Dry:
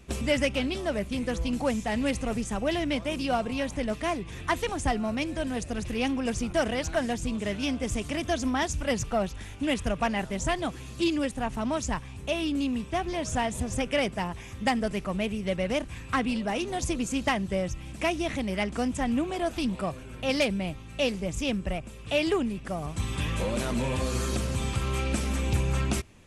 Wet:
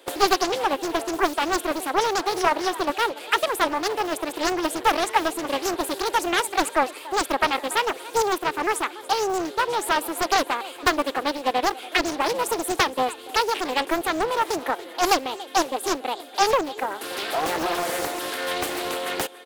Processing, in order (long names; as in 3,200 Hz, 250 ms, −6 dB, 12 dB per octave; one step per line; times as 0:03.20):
wrong playback speed 33 rpm record played at 45 rpm
inverse Chebyshev high-pass filter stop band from 180 Hz, stop band 40 dB
parametric band 5,400 Hz −6 dB 0.69 octaves
repeating echo 286 ms, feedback 37%, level −18 dB
highs frequency-modulated by the lows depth 0.69 ms
level +7.5 dB